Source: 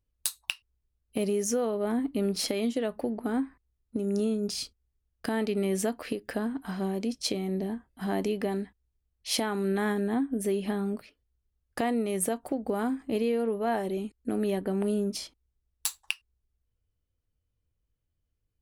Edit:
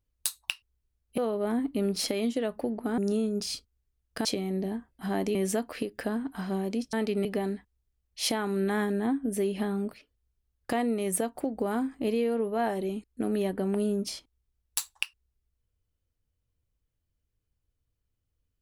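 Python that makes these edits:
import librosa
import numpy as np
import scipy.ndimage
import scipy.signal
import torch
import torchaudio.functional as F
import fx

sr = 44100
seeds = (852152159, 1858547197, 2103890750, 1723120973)

y = fx.edit(x, sr, fx.cut(start_s=1.18, length_s=0.4),
    fx.cut(start_s=3.38, length_s=0.68),
    fx.swap(start_s=5.33, length_s=0.32, other_s=7.23, other_length_s=1.1), tone=tone)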